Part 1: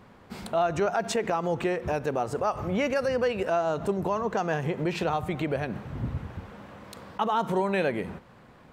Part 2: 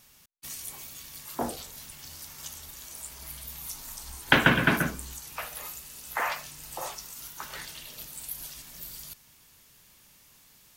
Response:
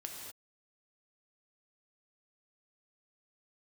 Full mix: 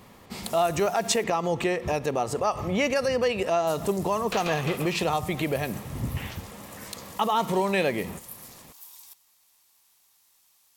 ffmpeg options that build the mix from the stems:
-filter_complex "[0:a]bandreject=frequency=1500:width=5.8,volume=1dB[link_01];[1:a]aeval=exprs='val(0)*sin(2*PI*970*n/s)':channel_layout=same,asoftclip=type=tanh:threshold=-18.5dB,volume=-10.5dB,asplit=3[link_02][link_03][link_04];[link_02]atrim=end=1.24,asetpts=PTS-STARTPTS,afade=type=out:start_time=1.236:duration=0.004:curve=hsin[link_05];[link_03]atrim=start=1.24:end=3.67,asetpts=PTS-STARTPTS,volume=0[link_06];[link_04]atrim=start=3.67,asetpts=PTS-STARTPTS,afade=type=in:duration=0.004:curve=hsin[link_07];[link_05][link_06][link_07]concat=n=3:v=0:a=1[link_08];[link_01][link_08]amix=inputs=2:normalize=0,highshelf=frequency=2600:gain=9"

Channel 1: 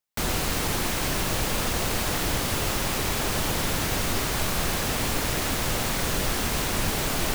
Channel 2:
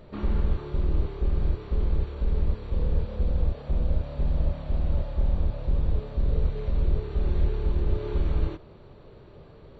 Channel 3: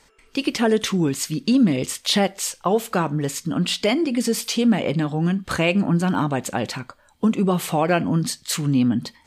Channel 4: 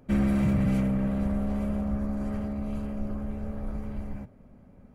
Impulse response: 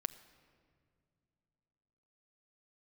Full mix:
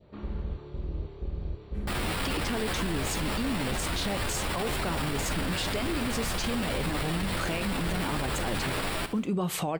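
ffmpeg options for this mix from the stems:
-filter_complex "[0:a]acrusher=samples=7:mix=1:aa=0.000001,asplit=2[link_01][link_02];[link_02]adelay=10.6,afreqshift=2.9[link_03];[link_01][link_03]amix=inputs=2:normalize=1,adelay=1700,volume=0.5dB,asplit=2[link_04][link_05];[link_05]volume=-13.5dB[link_06];[1:a]highpass=41,adynamicequalizer=threshold=0.00141:dfrequency=1400:dqfactor=1.1:tfrequency=1400:tqfactor=1.1:attack=5:release=100:ratio=0.375:range=2.5:mode=cutabove:tftype=bell,volume=-7dB[link_07];[2:a]acompressor=threshold=-24dB:ratio=6,adelay=1900,volume=-0.5dB[link_08];[3:a]adelay=1650,volume=-17dB[link_09];[link_06]aecho=0:1:70|140|210|280|350|420:1|0.45|0.202|0.0911|0.041|0.0185[link_10];[link_04][link_07][link_08][link_09][link_10]amix=inputs=5:normalize=0,alimiter=limit=-21.5dB:level=0:latency=1:release=12"

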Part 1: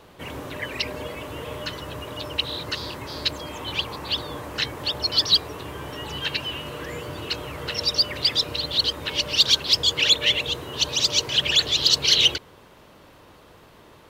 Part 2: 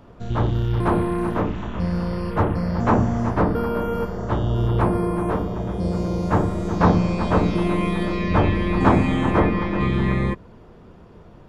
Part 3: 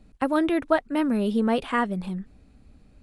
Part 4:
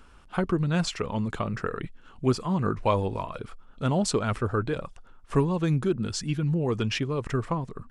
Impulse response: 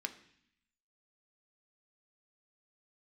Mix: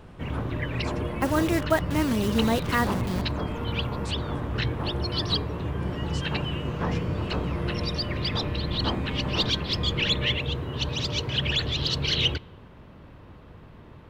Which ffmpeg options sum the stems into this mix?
-filter_complex "[0:a]bass=frequency=250:gain=14,treble=frequency=4000:gain=-15,volume=-4dB,asplit=2[link_01][link_02];[link_02]volume=-12dB[link_03];[1:a]volume=-14dB[link_04];[2:a]equalizer=frequency=2000:width=2.5:gain=4.5,acrusher=bits=6:dc=4:mix=0:aa=0.000001,adelay=1000,volume=-2dB[link_05];[3:a]acompressor=threshold=-38dB:ratio=3,volume=-3.5dB[link_06];[4:a]atrim=start_sample=2205[link_07];[link_03][link_07]afir=irnorm=-1:irlink=0[link_08];[link_01][link_04][link_05][link_06][link_08]amix=inputs=5:normalize=0"

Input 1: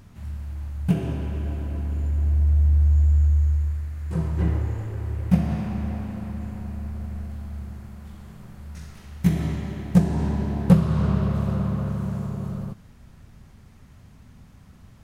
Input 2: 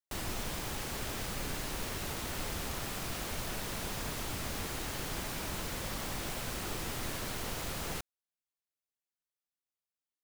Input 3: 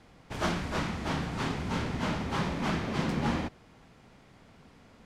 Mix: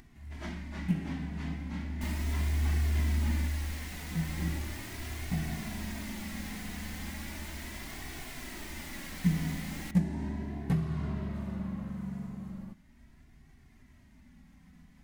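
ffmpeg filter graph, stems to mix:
ffmpeg -i stem1.wav -i stem2.wav -i stem3.wav -filter_complex "[0:a]acompressor=mode=upward:threshold=-40dB:ratio=2.5,volume=-7.5dB[link_01];[1:a]adelay=1900,volume=-2dB[link_02];[2:a]equalizer=frequency=180:width=1.9:gain=7,volume=-10.5dB[link_03];[link_01][link_02][link_03]amix=inputs=3:normalize=0,equalizer=frequency=100:width_type=o:width=0.33:gain=-11,equalizer=frequency=160:width_type=o:width=0.33:gain=8,equalizer=frequency=250:width_type=o:width=0.33:gain=5,equalizer=frequency=500:width_type=o:width=0.33:gain=-10,equalizer=frequency=1250:width_type=o:width=0.33:gain=-5,equalizer=frequency=2000:width_type=o:width=0.33:gain=9,flanger=delay=2.6:depth=1.5:regen=-26:speed=0.37:shape=triangular" out.wav

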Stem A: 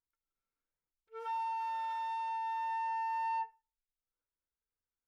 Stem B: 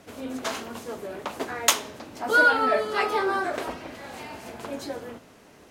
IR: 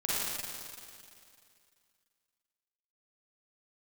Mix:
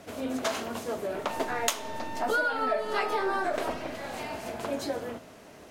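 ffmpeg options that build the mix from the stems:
-filter_complex "[0:a]aeval=exprs='if(lt(val(0),0),0.447*val(0),val(0))':channel_layout=same,volume=0.5dB,asplit=2[link_01][link_02];[link_02]volume=-17.5dB[link_03];[1:a]equalizer=frequency=640:width=5.5:gain=6,volume=1.5dB[link_04];[2:a]atrim=start_sample=2205[link_05];[link_03][link_05]afir=irnorm=-1:irlink=0[link_06];[link_01][link_04][link_06]amix=inputs=3:normalize=0,acompressor=threshold=-25dB:ratio=6"

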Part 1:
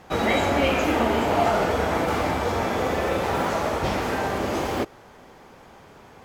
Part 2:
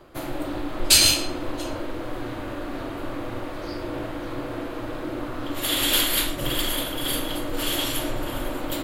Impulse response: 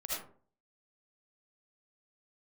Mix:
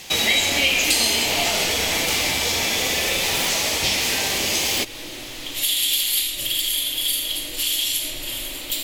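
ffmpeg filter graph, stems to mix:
-filter_complex "[0:a]volume=-0.5dB[link_01];[1:a]highshelf=frequency=11000:gain=-5,acompressor=threshold=-23dB:ratio=6,volume=-12dB,asplit=2[link_02][link_03];[link_03]volume=-6.5dB[link_04];[2:a]atrim=start_sample=2205[link_05];[link_04][link_05]afir=irnorm=-1:irlink=0[link_06];[link_01][link_02][link_06]amix=inputs=3:normalize=0,aexciter=amount=13.2:drive=2.8:freq=2100,acompressor=threshold=-22dB:ratio=2"

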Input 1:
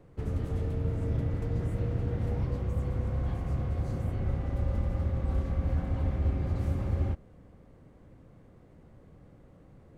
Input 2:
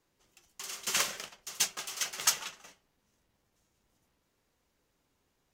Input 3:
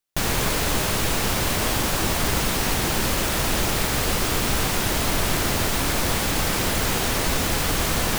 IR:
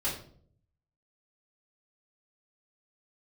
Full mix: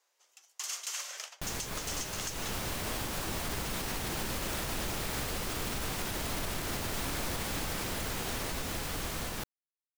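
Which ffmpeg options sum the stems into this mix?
-filter_complex "[1:a]highpass=frequency=550:width=0.5412,highpass=frequency=550:width=1.3066,volume=1dB[link_01];[2:a]dynaudnorm=framelen=420:gausssize=9:maxgain=11.5dB,adelay=1250,volume=-13.5dB[link_02];[link_01]equalizer=frequency=6400:width=1.4:gain=5,acompressor=threshold=-28dB:ratio=6,volume=0dB[link_03];[link_02][link_03]amix=inputs=2:normalize=0,alimiter=level_in=1dB:limit=-24dB:level=0:latency=1:release=181,volume=-1dB"

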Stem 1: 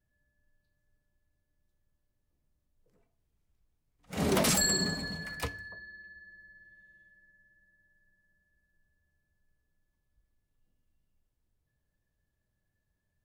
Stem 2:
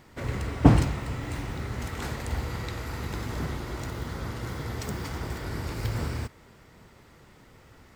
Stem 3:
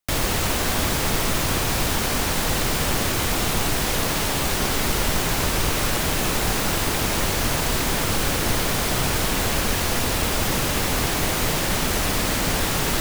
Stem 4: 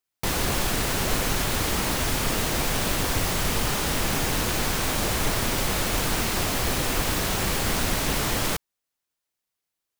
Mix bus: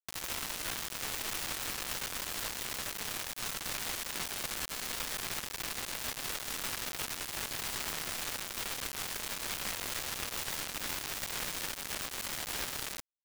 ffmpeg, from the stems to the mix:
ffmpeg -i stem1.wav -i stem2.wav -i stem3.wav -i stem4.wav -filter_complex "[0:a]asoftclip=type=tanh:threshold=-21dB,volume=1.5dB[link_01];[2:a]volume=-1dB[link_02];[3:a]alimiter=limit=-22.5dB:level=0:latency=1:release=397,adelay=1150,volume=-3dB[link_03];[link_01][link_02][link_03]amix=inputs=3:normalize=0,acrossover=split=1100|4700[link_04][link_05][link_06];[link_04]acompressor=threshold=-42dB:ratio=4[link_07];[link_05]acompressor=threshold=-34dB:ratio=4[link_08];[link_06]acompressor=threshold=-43dB:ratio=4[link_09];[link_07][link_08][link_09]amix=inputs=3:normalize=0,alimiter=level_in=1.5dB:limit=-24dB:level=0:latency=1:release=148,volume=-1.5dB,volume=0dB,acrusher=bits=4:mix=0:aa=0.000001" out.wav

